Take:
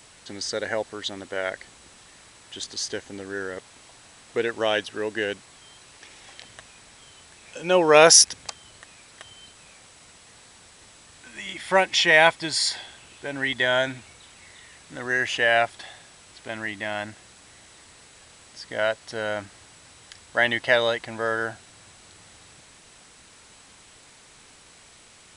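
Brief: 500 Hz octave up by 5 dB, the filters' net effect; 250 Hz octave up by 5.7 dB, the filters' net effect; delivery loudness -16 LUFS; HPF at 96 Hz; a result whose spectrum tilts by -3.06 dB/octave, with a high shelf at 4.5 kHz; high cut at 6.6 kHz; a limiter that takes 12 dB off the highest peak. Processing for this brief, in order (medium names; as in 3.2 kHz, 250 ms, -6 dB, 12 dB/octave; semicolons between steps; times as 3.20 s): high-pass 96 Hz; low-pass 6.6 kHz; peaking EQ 250 Hz +6 dB; peaking EQ 500 Hz +5 dB; treble shelf 4.5 kHz -9 dB; trim +9.5 dB; peak limiter -2 dBFS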